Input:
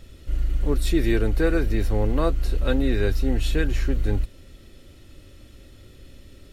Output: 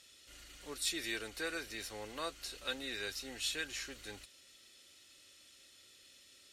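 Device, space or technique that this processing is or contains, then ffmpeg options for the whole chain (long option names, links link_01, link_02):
piezo pickup straight into a mixer: -af "lowpass=7300,aderivative,volume=4dB"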